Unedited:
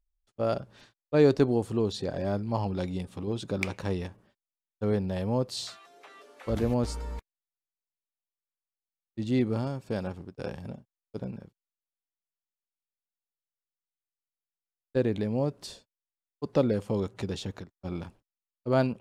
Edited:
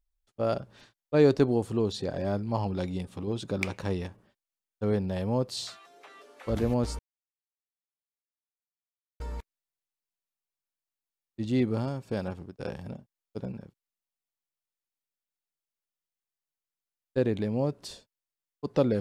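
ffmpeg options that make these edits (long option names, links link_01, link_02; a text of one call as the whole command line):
ffmpeg -i in.wav -filter_complex "[0:a]asplit=2[link_01][link_02];[link_01]atrim=end=6.99,asetpts=PTS-STARTPTS,afade=type=out:start_time=6.986:duration=0.004:curve=hsin,apad=pad_dur=2.21[link_03];[link_02]atrim=start=6.99,asetpts=PTS-STARTPTS,afade=type=in:duration=0.004:curve=hsin[link_04];[link_03][link_04]concat=n=2:v=0:a=1" out.wav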